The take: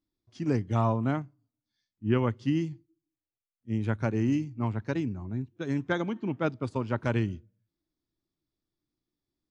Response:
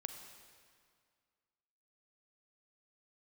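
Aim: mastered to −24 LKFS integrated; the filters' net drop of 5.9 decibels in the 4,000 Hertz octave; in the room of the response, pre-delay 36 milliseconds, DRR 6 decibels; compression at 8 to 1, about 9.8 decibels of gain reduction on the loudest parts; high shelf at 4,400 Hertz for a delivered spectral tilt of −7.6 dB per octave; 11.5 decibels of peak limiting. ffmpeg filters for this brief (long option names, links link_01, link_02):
-filter_complex "[0:a]equalizer=frequency=4000:width_type=o:gain=-6.5,highshelf=frequency=4400:gain=-4.5,acompressor=threshold=-30dB:ratio=8,alimiter=level_in=6.5dB:limit=-24dB:level=0:latency=1,volume=-6.5dB,asplit=2[link_01][link_02];[1:a]atrim=start_sample=2205,adelay=36[link_03];[link_02][link_03]afir=irnorm=-1:irlink=0,volume=-3.5dB[link_04];[link_01][link_04]amix=inputs=2:normalize=0,volume=15.5dB"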